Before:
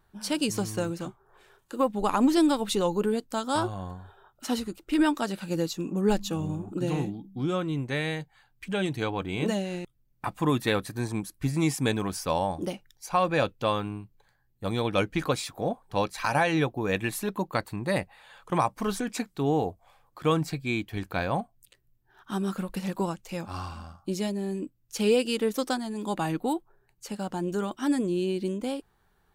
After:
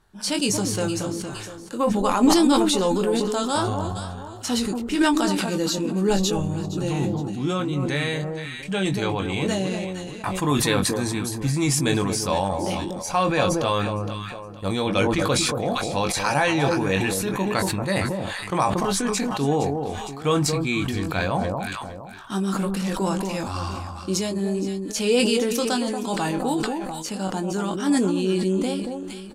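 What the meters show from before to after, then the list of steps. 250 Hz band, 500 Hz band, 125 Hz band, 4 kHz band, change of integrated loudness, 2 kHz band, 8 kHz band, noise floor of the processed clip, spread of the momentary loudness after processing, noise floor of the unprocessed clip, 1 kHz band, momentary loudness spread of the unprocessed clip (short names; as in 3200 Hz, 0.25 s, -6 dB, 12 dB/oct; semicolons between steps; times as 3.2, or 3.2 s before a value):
+5.5 dB, +5.0 dB, +6.0 dB, +8.5 dB, +5.0 dB, +5.5 dB, +11.5 dB, -37 dBFS, 9 LU, -68 dBFS, +5.0 dB, 12 LU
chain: LPF 8600 Hz 12 dB/oct; high shelf 4900 Hz +9.5 dB; in parallel at -1 dB: level quantiser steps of 19 dB; on the sum: doubler 21 ms -7.5 dB; on a send: echo with dull and thin repeats by turns 0.232 s, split 1100 Hz, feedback 50%, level -6.5 dB; on the sum: sustainer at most 24 dB/s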